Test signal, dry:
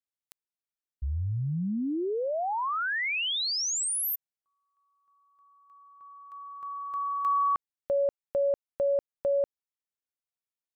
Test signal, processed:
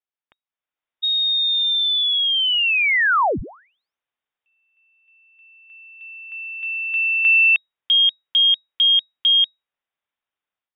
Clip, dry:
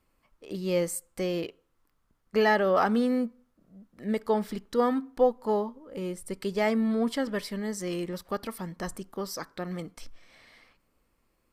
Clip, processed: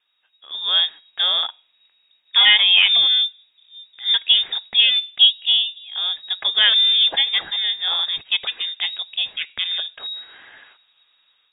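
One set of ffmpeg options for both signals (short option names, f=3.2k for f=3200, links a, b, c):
-af "dynaudnorm=f=440:g=3:m=10dB,highshelf=f=2.2k:g=5.5,lowpass=f=3.2k:t=q:w=0.5098,lowpass=f=3.2k:t=q:w=0.6013,lowpass=f=3.2k:t=q:w=0.9,lowpass=f=3.2k:t=q:w=2.563,afreqshift=-3800"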